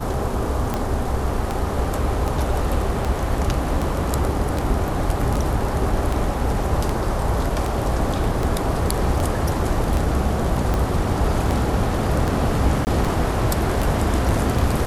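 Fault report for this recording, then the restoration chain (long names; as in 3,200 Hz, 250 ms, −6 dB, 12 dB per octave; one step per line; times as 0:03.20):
scratch tick 78 rpm −10 dBFS
0:12.85–0:12.87: drop-out 19 ms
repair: click removal
repair the gap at 0:12.85, 19 ms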